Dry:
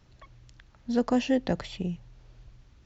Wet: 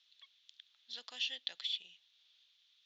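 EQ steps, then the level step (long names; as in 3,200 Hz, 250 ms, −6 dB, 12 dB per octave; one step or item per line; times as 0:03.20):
resonant band-pass 3,500 Hz, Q 6.3
high-frequency loss of the air 66 metres
spectral tilt +4.5 dB per octave
+3.0 dB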